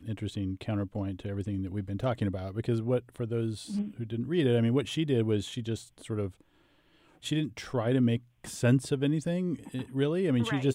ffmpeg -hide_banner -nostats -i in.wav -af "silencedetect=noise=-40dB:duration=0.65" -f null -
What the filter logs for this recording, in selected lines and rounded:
silence_start: 6.30
silence_end: 7.24 | silence_duration: 0.94